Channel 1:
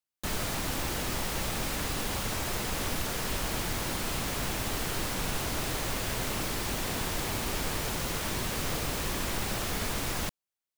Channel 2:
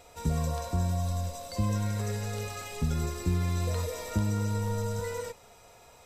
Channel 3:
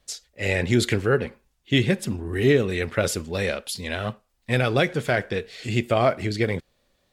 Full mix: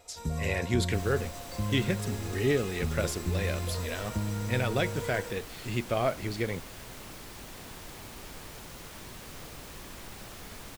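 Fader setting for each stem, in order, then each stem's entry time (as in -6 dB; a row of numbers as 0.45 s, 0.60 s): -12.5 dB, -4.0 dB, -8.0 dB; 0.70 s, 0.00 s, 0.00 s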